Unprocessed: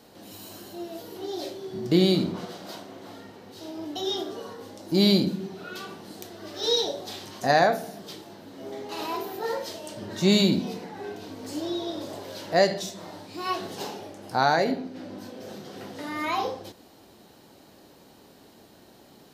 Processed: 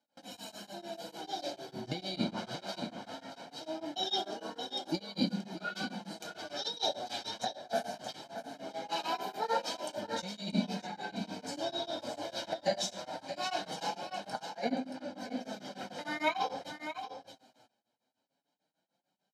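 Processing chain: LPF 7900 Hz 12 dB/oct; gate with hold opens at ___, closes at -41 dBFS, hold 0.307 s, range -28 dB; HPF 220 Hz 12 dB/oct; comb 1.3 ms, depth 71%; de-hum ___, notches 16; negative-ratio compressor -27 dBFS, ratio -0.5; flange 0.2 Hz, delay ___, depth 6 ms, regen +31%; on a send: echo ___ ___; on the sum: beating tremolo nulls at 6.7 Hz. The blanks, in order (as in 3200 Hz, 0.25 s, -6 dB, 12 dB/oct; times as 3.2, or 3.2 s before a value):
-39 dBFS, 385.6 Hz, 3.3 ms, 0.627 s, -8.5 dB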